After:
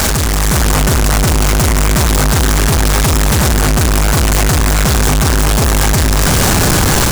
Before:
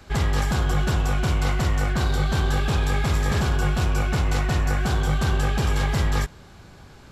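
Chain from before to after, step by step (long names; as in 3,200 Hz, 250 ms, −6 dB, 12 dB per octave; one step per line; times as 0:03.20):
sign of each sample alone
bass and treble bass +1 dB, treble +13 dB
automatic gain control
soft clipping −16.5 dBFS, distortion −5 dB
level +8.5 dB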